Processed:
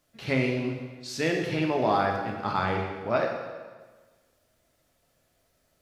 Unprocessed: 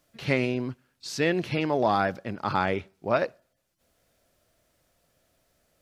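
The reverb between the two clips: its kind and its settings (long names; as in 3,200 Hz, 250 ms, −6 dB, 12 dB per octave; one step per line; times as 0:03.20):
dense smooth reverb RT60 1.4 s, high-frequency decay 0.9×, DRR 1 dB
level −3 dB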